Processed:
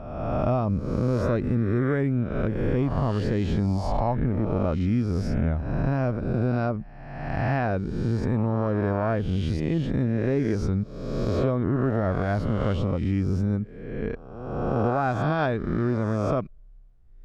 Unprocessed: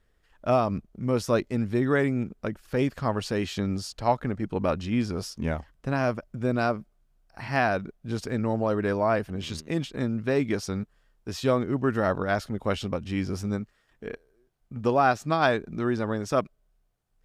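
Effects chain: reverse spectral sustain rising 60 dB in 1.21 s; RIAA curve playback; compression 2.5:1, threshold -23 dBFS, peak gain reduction 8.5 dB

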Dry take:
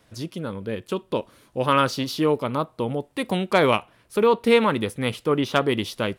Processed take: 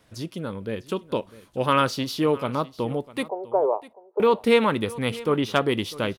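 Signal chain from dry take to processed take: 3.28–4.20 s: Chebyshev band-pass 390–930 Hz, order 3; on a send: delay 650 ms -19 dB; on the sum: trim -1 dB

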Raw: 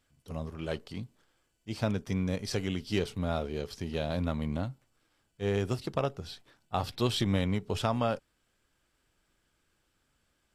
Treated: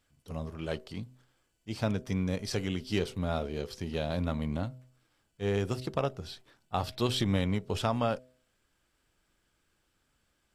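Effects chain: de-hum 127.1 Hz, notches 5

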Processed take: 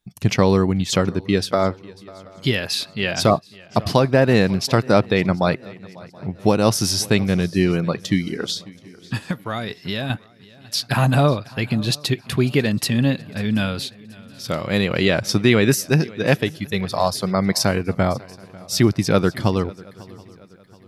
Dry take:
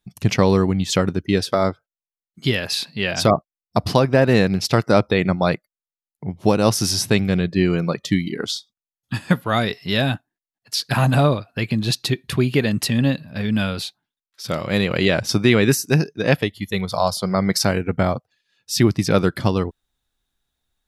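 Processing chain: 9.18–10.10 s: compression 4:1, threshold -23 dBFS, peak gain reduction 10 dB; on a send: shuffle delay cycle 727 ms, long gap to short 3:1, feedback 37%, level -22 dB

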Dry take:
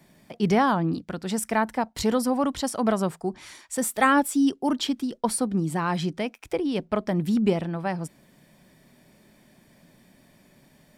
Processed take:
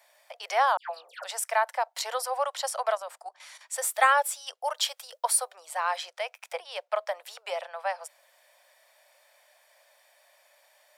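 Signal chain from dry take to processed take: steep high-pass 540 Hz 72 dB/octave; 0.77–1.24 s: phase dispersion lows, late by 137 ms, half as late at 1.7 kHz; 2.95–3.61 s: level held to a coarse grid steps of 12 dB; 4.74–5.53 s: treble shelf 7.1 kHz -> 11 kHz +11 dB

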